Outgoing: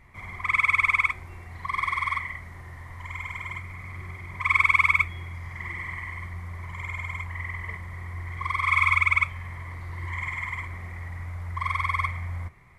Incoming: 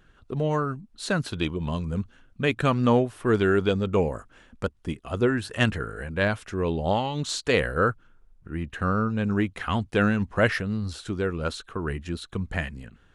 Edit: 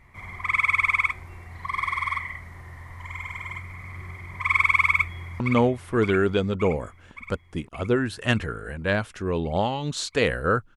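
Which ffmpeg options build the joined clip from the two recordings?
ffmpeg -i cue0.wav -i cue1.wav -filter_complex "[0:a]apad=whole_dur=10.76,atrim=end=10.76,atrim=end=5.402[link_01];[1:a]atrim=start=2.718:end=8.08[link_02];[link_01][link_02]acrossfade=duration=0.004:curve1=hsin:curve2=hsin,asplit=2[link_03][link_04];[link_04]afade=type=in:start_time=4.88:duration=0.01,afade=type=out:start_time=5.4:duration=0.01,aecho=0:1:570|1140|1710|2280|2850|3420|3990|4560|5130:0.354813|0.230629|0.149909|0.0974406|0.0633364|0.0411687|0.0267596|0.0173938|0.0113059[link_05];[link_03][link_05]amix=inputs=2:normalize=0" out.wav

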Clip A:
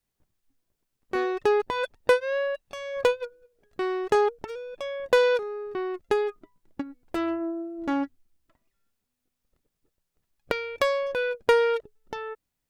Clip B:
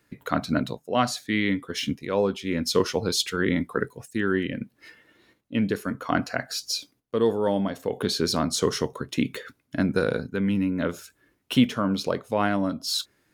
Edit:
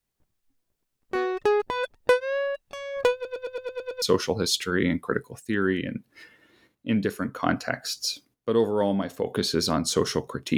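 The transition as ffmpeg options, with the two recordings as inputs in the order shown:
ffmpeg -i cue0.wav -i cue1.wav -filter_complex "[0:a]apad=whole_dur=10.57,atrim=end=10.57,asplit=8[link_01][link_02][link_03][link_04][link_05][link_06][link_07][link_08];[link_01]atrim=end=3.252[link_09];[link_02]atrim=start=3.138:end=3.252[link_10];[link_03]atrim=start=3.138:end=3.252[link_11];[link_04]atrim=start=3.138:end=3.252[link_12];[link_05]atrim=start=3.138:end=3.252[link_13];[link_06]atrim=start=3.138:end=3.252[link_14];[link_07]atrim=start=3.138:end=3.252[link_15];[link_08]atrim=start=3.138:end=3.252[link_16];[1:a]atrim=start=2.678:end=9.23[link_17];[link_09][link_10]acrossfade=duration=0.004:curve1=hsin:curve2=hsin[link_18];[link_18][link_11]acrossfade=duration=0.004:curve1=hsin:curve2=hsin[link_19];[link_19][link_12]acrossfade=duration=0.004:curve1=hsin:curve2=hsin[link_20];[link_20][link_13]acrossfade=duration=0.004:curve1=hsin:curve2=hsin[link_21];[link_21][link_14]acrossfade=duration=0.004:curve1=hsin:curve2=hsin[link_22];[link_22][link_15]acrossfade=duration=0.004:curve1=hsin:curve2=hsin[link_23];[link_23][link_16]acrossfade=duration=0.004:curve1=hsin:curve2=hsin[link_24];[link_24][link_17]acrossfade=duration=0.004:curve1=hsin:curve2=hsin" out.wav

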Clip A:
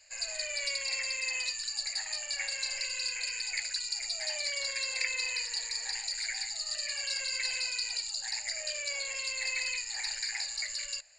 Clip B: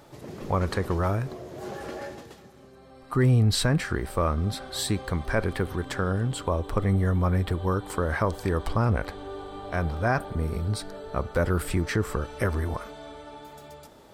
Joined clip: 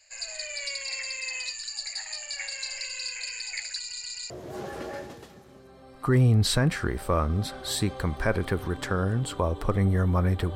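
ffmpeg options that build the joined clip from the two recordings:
ffmpeg -i cue0.wav -i cue1.wav -filter_complex "[0:a]apad=whole_dur=10.55,atrim=end=10.55,asplit=4[link_01][link_02][link_03][link_04];[link_01]atrim=end=3.912[link_05];[link_02]atrim=start=3.778:end=3.912[link_06];[link_03]atrim=start=3.778:end=3.912[link_07];[link_04]atrim=start=3.778:end=3.912[link_08];[1:a]atrim=start=1.378:end=7.63[link_09];[link_05][link_06]acrossfade=duration=0.004:curve1=hsin:curve2=hsin[link_10];[link_10][link_07]acrossfade=duration=0.004:curve1=hsin:curve2=hsin[link_11];[link_11][link_08]acrossfade=duration=0.004:curve1=hsin:curve2=hsin[link_12];[link_12][link_09]acrossfade=duration=0.004:curve1=hsin:curve2=hsin" out.wav

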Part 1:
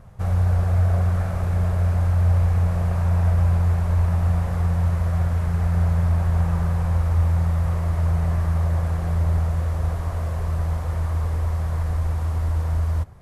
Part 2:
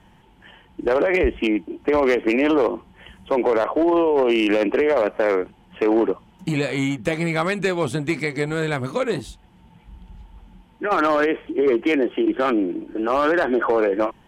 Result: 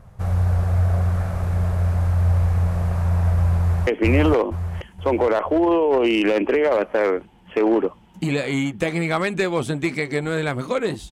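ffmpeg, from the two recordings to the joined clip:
ffmpeg -i cue0.wav -i cue1.wav -filter_complex "[0:a]apad=whole_dur=11.11,atrim=end=11.11,atrim=end=3.872[link_01];[1:a]atrim=start=2.118:end=9.36[link_02];[link_01][link_02]acrossfade=duration=0.004:curve1=hsin:curve2=hsin,asplit=2[link_03][link_04];[link_04]afade=type=in:start_time=3.57:duration=0.01,afade=type=out:start_time=3.87:duration=0.01,aecho=0:1:470|940|1410|1880|2350|2820:1|0.45|0.2025|0.091125|0.0410062|0.0184528[link_05];[link_03][link_05]amix=inputs=2:normalize=0" out.wav

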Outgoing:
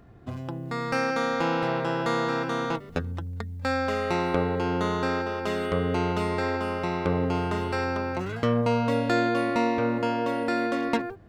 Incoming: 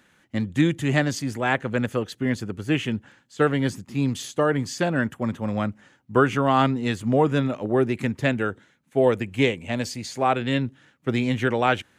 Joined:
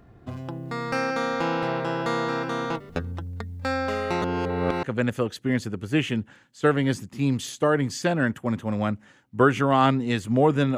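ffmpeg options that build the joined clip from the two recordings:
ffmpeg -i cue0.wav -i cue1.wav -filter_complex "[0:a]apad=whole_dur=10.77,atrim=end=10.77,asplit=2[link_01][link_02];[link_01]atrim=end=4.222[link_03];[link_02]atrim=start=4.218:end=4.832,asetpts=PTS-STARTPTS,areverse[link_04];[1:a]atrim=start=1.588:end=7.53[link_05];[link_03][link_04]acrossfade=duration=0.004:curve1=hsin:curve2=hsin[link_06];[link_06][link_05]acrossfade=duration=0.004:curve1=hsin:curve2=hsin" out.wav

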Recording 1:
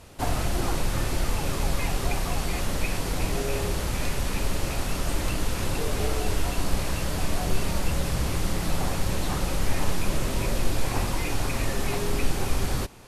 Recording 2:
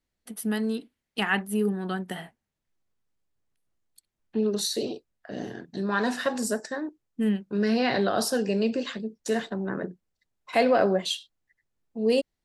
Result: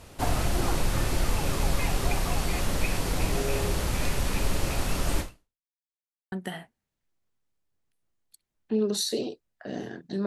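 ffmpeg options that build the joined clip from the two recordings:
ffmpeg -i cue0.wav -i cue1.wav -filter_complex "[0:a]apad=whole_dur=10.26,atrim=end=10.26,asplit=2[link_01][link_02];[link_01]atrim=end=5.67,asetpts=PTS-STARTPTS,afade=type=out:start_time=5.2:duration=0.47:curve=exp[link_03];[link_02]atrim=start=5.67:end=6.32,asetpts=PTS-STARTPTS,volume=0[link_04];[1:a]atrim=start=1.96:end=5.9,asetpts=PTS-STARTPTS,afade=type=in:duration=0.004:curve=hsin[link_05];[link_03][link_04][link_05]concat=n=3:v=0:a=1" out.wav

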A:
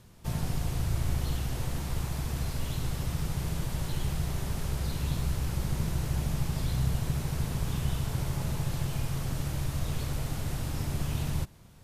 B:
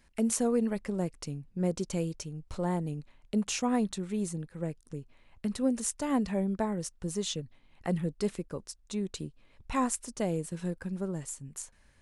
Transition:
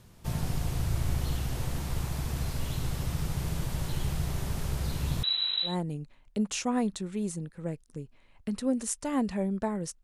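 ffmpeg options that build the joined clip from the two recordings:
ffmpeg -i cue0.wav -i cue1.wav -filter_complex "[0:a]asettb=1/sr,asplit=3[link_01][link_02][link_03];[link_01]atrim=end=5.234[link_04];[link_02]atrim=start=5.23:end=5.76,asetpts=PTS-STARTPTS,afade=type=in:duration=0.004:curve=qsin,afade=type=out:start_time=0.526:duration=0.004:curve=qsin,lowpass=frequency=3400:width_type=q:width=0.5098,lowpass=frequency=3400:width_type=q:width=0.6013,lowpass=frequency=3400:width_type=q:width=0.9,lowpass=frequency=3400:width_type=q:width=2.563,afreqshift=-4000[link_05];[link_03]atrim=start=5.756[link_06];[link_04][link_05]acrossfade=duration=0.004:curve1=hsin:curve2=qsin[link_07];[link_07][link_06]acrossfade=duration=0.004:curve1=qsin:curve2=hsin,apad=whole_dur=10.03,atrim=end=10.03,atrim=end=5.76,asetpts=PTS-STARTPTS[link_08];[1:a]atrim=start=2.59:end=7,asetpts=PTS-STARTPTS[link_09];[link_08][link_09]acrossfade=duration=0.14:curve1=tri:curve2=tri" out.wav

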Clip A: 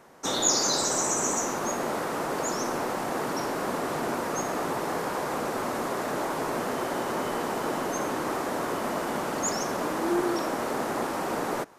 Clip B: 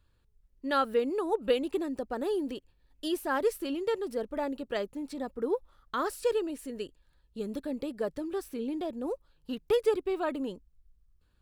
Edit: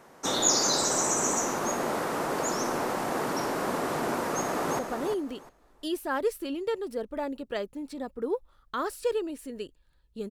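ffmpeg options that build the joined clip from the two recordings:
ffmpeg -i cue0.wav -i cue1.wav -filter_complex "[0:a]apad=whole_dur=10.3,atrim=end=10.3,atrim=end=4.792[link_01];[1:a]atrim=start=1.988:end=7.5[link_02];[link_01][link_02]acrossfade=duration=0.004:curve1=hsin:curve2=hsin,asplit=2[link_03][link_04];[link_04]afade=type=in:start_time=4.33:duration=0.01,afade=type=out:start_time=4.79:duration=0.01,aecho=0:1:350|700|1050:0.446684|0.0893367|0.0178673[link_05];[link_03][link_05]amix=inputs=2:normalize=0" out.wav

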